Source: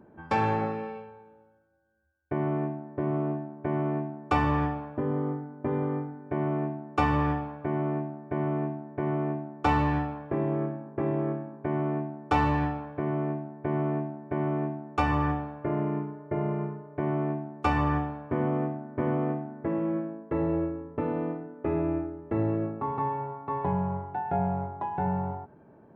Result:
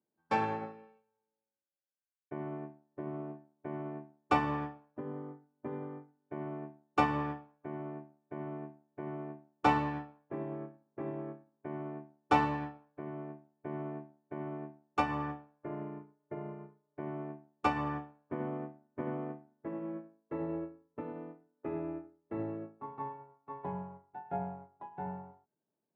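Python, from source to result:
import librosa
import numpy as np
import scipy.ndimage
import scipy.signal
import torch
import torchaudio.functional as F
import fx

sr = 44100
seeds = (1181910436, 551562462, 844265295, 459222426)

y = scipy.signal.sosfilt(scipy.signal.butter(2, 150.0, 'highpass', fs=sr, output='sos'), x)
y = fx.upward_expand(y, sr, threshold_db=-44.0, expansion=2.5)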